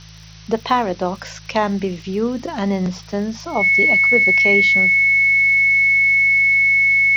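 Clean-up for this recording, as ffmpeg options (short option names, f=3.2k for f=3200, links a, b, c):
-af "adeclick=t=4,bandreject=f=53.7:t=h:w=4,bandreject=f=107.4:t=h:w=4,bandreject=f=161.1:t=h:w=4,bandreject=f=2.2k:w=30,afftdn=nr=24:nf=-39"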